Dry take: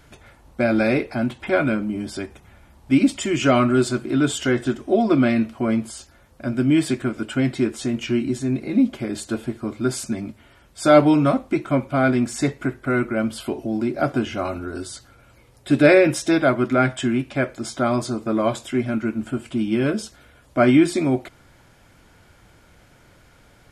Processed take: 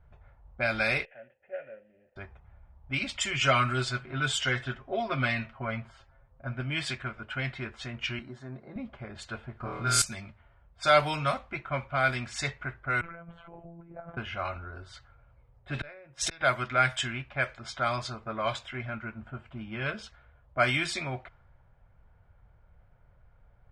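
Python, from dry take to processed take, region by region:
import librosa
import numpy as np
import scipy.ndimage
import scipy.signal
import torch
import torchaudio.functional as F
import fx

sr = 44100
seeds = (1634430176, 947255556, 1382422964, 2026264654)

y = fx.chain(x, sr, fx.cvsd(bps=16000),
    fx.vowel_filter(vowel='e'), at=(1.05, 2.16))
y = fx.chain(y, sr, fx.high_shelf(hz=4300.0, db=-6.5),
    fx.comb(ms=7.5, depth=0.54), at=(3.31, 6.61))
y = fx.chain(y, sr, fx.highpass(hz=170.0, slope=12),
    fx.peak_eq(hz=2500.0, db=-13.5, octaves=0.41), at=(8.19, 8.76))
y = fx.chain(y, sr, fx.room_flutter(wall_m=4.3, rt60_s=1.0),
    fx.env_flatten(amount_pct=50), at=(9.6, 10.02))
y = fx.chain(y, sr, fx.over_compress(threshold_db=-29.0, ratio=-1.0),
    fx.robotise(hz=169.0),
    fx.moving_average(points=9), at=(13.01, 14.17))
y = fx.chain(y, sr, fx.high_shelf(hz=4800.0, db=5.0),
    fx.gate_flip(shuts_db=-11.0, range_db=-40),
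    fx.env_flatten(amount_pct=50), at=(15.75, 16.41))
y = fx.tone_stack(y, sr, knobs='10-0-10')
y = fx.env_lowpass(y, sr, base_hz=570.0, full_db=-26.5)
y = fx.high_shelf(y, sr, hz=6000.0, db=-7.0)
y = y * 10.0 ** (5.0 / 20.0)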